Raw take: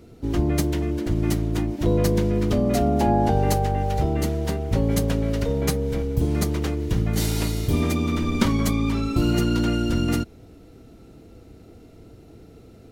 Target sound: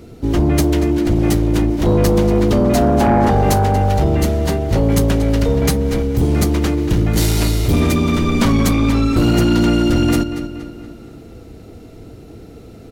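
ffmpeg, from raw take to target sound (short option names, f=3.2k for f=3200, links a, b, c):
-filter_complex "[0:a]asplit=2[a][b];[b]adelay=235,lowpass=f=5k:p=1,volume=-11.5dB,asplit=2[c][d];[d]adelay=235,lowpass=f=5k:p=1,volume=0.51,asplit=2[e][f];[f]adelay=235,lowpass=f=5k:p=1,volume=0.51,asplit=2[g][h];[h]adelay=235,lowpass=f=5k:p=1,volume=0.51,asplit=2[i][j];[j]adelay=235,lowpass=f=5k:p=1,volume=0.51[k];[a][c][e][g][i][k]amix=inputs=6:normalize=0,aeval=exprs='0.531*(cos(1*acos(clip(val(0)/0.531,-1,1)))-cos(1*PI/2))+0.188*(cos(5*acos(clip(val(0)/0.531,-1,1)))-cos(5*PI/2))':c=same"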